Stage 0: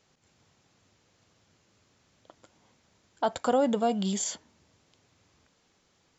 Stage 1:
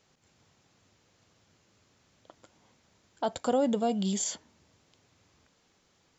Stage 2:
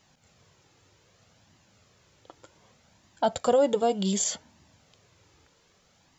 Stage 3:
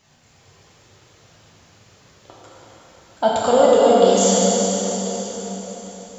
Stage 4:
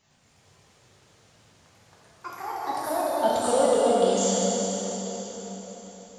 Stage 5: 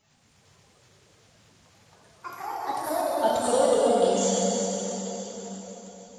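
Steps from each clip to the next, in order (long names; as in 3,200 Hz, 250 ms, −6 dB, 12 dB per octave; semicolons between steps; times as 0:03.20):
dynamic equaliser 1,300 Hz, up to −6 dB, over −42 dBFS, Q 0.72
flanger 0.65 Hz, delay 1 ms, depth 1.4 ms, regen −36%; level +8.5 dB
dense smooth reverb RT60 4.8 s, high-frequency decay 0.9×, DRR −7 dB; level +3.5 dB
delay with pitch and tempo change per echo 106 ms, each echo +4 semitones, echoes 2, each echo −6 dB; level −8 dB
spectral magnitudes quantised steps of 15 dB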